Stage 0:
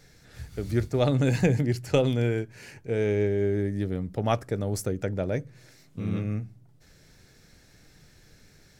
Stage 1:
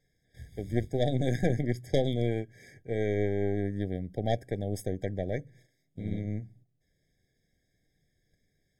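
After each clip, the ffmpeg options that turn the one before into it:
ffmpeg -i in.wav -af "aeval=exprs='0.355*(cos(1*acos(clip(val(0)/0.355,-1,1)))-cos(1*PI/2))+0.1*(cos(4*acos(clip(val(0)/0.355,-1,1)))-cos(4*PI/2))':channel_layout=same,agate=range=-12dB:threshold=-50dB:ratio=16:detection=peak,afftfilt=real='re*eq(mod(floor(b*sr/1024/780),2),0)':imag='im*eq(mod(floor(b*sr/1024/780),2),0)':win_size=1024:overlap=0.75,volume=-6dB" out.wav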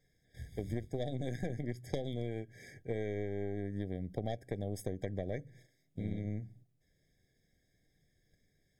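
ffmpeg -i in.wav -af "acompressor=threshold=-32dB:ratio=12" out.wav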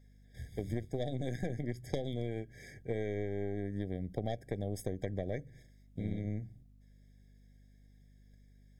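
ffmpeg -i in.wav -af "aeval=exprs='val(0)+0.001*(sin(2*PI*50*n/s)+sin(2*PI*2*50*n/s)/2+sin(2*PI*3*50*n/s)/3+sin(2*PI*4*50*n/s)/4+sin(2*PI*5*50*n/s)/5)':channel_layout=same,volume=1dB" out.wav

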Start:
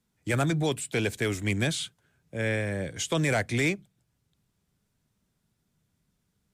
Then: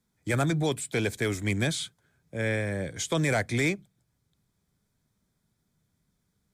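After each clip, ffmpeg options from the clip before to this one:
ffmpeg -i in.wav -af "bandreject=frequency=2800:width=6.3" out.wav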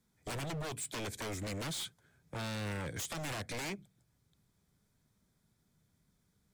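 ffmpeg -i in.wav -af "acompressor=threshold=-32dB:ratio=4,aeval=exprs='0.02*(abs(mod(val(0)/0.02+3,4)-2)-1)':channel_layout=same" out.wav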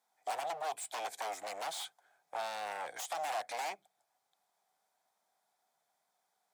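ffmpeg -i in.wav -af "highpass=frequency=750:width_type=q:width=6.9,volume=-2.5dB" out.wav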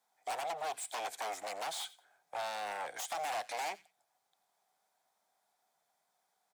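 ffmpeg -i in.wav -filter_complex "[0:a]acrossover=split=370|1300[link_01][link_02][link_03];[link_02]asoftclip=type=hard:threshold=-36.5dB[link_04];[link_03]aecho=1:1:90|180:0.119|0.0273[link_05];[link_01][link_04][link_05]amix=inputs=3:normalize=0,volume=1dB" out.wav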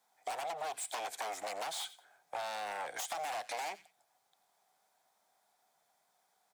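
ffmpeg -i in.wav -af "acompressor=threshold=-40dB:ratio=6,volume=4dB" out.wav

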